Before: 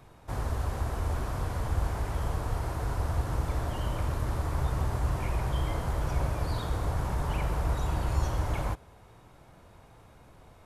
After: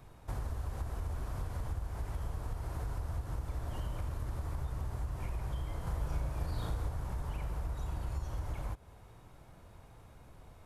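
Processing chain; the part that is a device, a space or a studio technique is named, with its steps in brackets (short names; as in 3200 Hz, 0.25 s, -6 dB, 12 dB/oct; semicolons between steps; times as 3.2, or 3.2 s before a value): ASMR close-microphone chain (low shelf 110 Hz +7 dB; compressor 6:1, threshold -30 dBFS, peak gain reduction 13 dB; high shelf 9200 Hz +4.5 dB); 5.83–6.87 doubler 36 ms -2 dB; gain -4 dB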